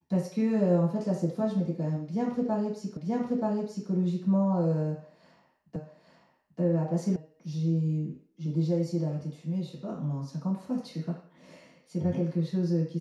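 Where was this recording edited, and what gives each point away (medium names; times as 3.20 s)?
2.97 s: repeat of the last 0.93 s
5.76 s: repeat of the last 0.84 s
7.16 s: sound stops dead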